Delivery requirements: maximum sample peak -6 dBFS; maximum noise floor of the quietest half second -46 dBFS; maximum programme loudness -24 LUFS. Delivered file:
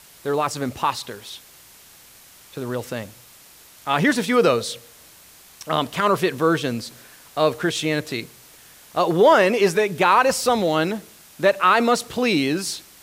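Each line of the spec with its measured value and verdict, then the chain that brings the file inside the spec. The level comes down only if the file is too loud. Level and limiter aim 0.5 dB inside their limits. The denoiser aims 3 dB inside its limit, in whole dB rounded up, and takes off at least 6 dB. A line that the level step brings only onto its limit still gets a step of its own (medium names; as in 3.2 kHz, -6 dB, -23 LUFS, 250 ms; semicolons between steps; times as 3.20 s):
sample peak -4.5 dBFS: fail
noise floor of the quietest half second -48 dBFS: pass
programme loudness -20.5 LUFS: fail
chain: trim -4 dB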